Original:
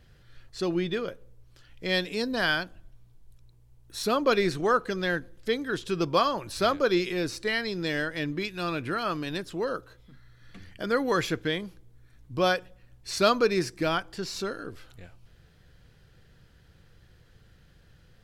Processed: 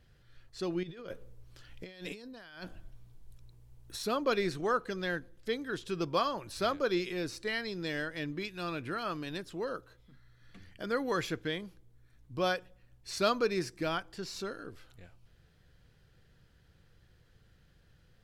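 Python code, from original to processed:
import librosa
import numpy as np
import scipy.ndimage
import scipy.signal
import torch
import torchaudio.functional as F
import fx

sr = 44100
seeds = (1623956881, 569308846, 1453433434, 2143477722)

y = fx.over_compress(x, sr, threshold_db=-39.0, ratio=-1.0, at=(0.83, 4.01))
y = y * 10.0 ** (-6.5 / 20.0)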